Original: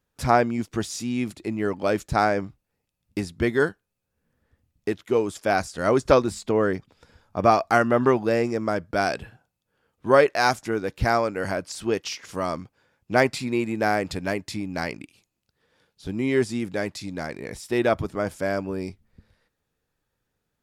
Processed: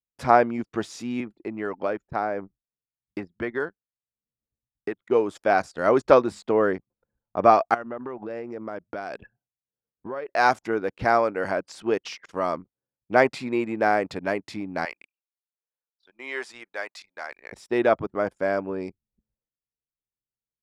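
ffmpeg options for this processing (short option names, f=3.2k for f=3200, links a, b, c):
-filter_complex "[0:a]asettb=1/sr,asplit=3[a][b][c];[a]atrim=end=1.204[d];[b]atrim=start=1.2:end=5.01,asetpts=PTS-STARTPTS,afade=t=in:d=0.004:c=qsin,afade=t=out:st=3.806:d=0.004:c=qsin,acrossover=split=770|2500[e][f][g];[e]acompressor=threshold=-28dB:ratio=4[h];[f]acompressor=threshold=-32dB:ratio=4[i];[g]acompressor=threshold=-51dB:ratio=4[j];[h][i][j]amix=inputs=3:normalize=0[k];[c]atrim=start=5.006[l];[d][k]acrossfade=d=0.004:c1=hsin:c2=qsin[m];[m][l]acrossfade=d=0.004:c1=qsin:c2=hsin,asettb=1/sr,asplit=3[n][o][p];[n]atrim=end=7.744[q];[o]atrim=start=7.74:end=10.29,asetpts=PTS-STARTPTS,afade=t=in:d=0.004:c=qsin,afade=t=out:st=2.546:d=0.004:c=qsin,acompressor=threshold=-29dB:ratio=20:attack=3.2:release=140:knee=1:detection=peak[r];[p]atrim=start=10.286[s];[q][r]acrossfade=d=0.004:c1=hsin:c2=qsin[t];[t][s]acrossfade=d=0.004:c1=qsin:c2=hsin,asettb=1/sr,asplit=3[u][v][w];[u]atrim=end=14.854[x];[v]atrim=start=14.85:end=17.52,asetpts=PTS-STARTPTS,afade=t=in:d=0.004:c=qsin,afade=t=out:st=2.666:d=0.004:c=qsin,highpass=920[y];[w]atrim=start=17.516[z];[x][y]acrossfade=d=0.004:c1=hsin:c2=qsin[aa];[aa][z]acrossfade=d=0.004:c1=qsin:c2=hsin,highpass=f=530:p=1,anlmdn=0.158,lowpass=f=1.2k:p=1,volume=5.5dB"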